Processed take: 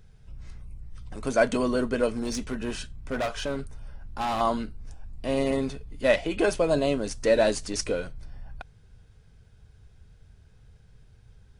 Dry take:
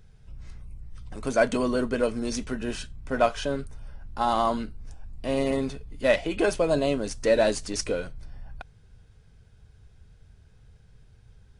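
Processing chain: 2.11–4.41 overloaded stage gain 24.5 dB

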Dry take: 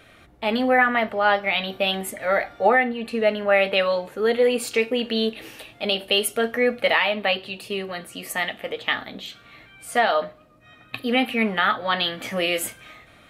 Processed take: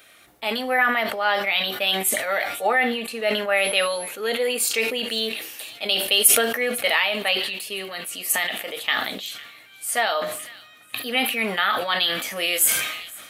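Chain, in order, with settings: RIAA curve recording; on a send: thin delay 0.504 s, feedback 56%, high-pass 2100 Hz, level -21.5 dB; 3.56–4.08 on the sum: whine 11000 Hz -34 dBFS; sustainer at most 53 dB/s; gain -3 dB

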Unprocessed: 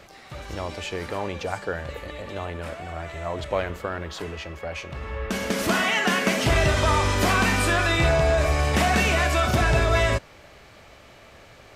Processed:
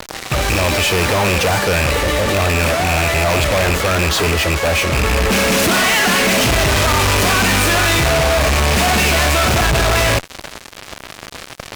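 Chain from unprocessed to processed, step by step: rattling part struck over -33 dBFS, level -17 dBFS; fuzz box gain 46 dB, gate -43 dBFS

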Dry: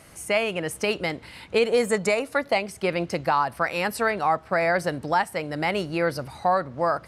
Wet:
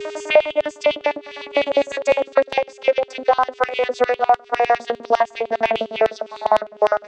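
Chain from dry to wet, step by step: vocoder on a gliding note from D#4, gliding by -7 st; LFO high-pass square 9.9 Hz 600–3000 Hz; whine 410 Hz -53 dBFS; three-band squash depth 70%; gain +5.5 dB

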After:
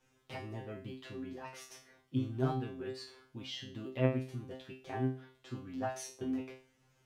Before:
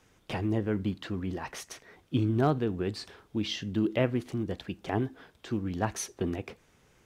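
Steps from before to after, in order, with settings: resonator 130 Hz, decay 0.38 s, harmonics all, mix 100%; gain +3.5 dB

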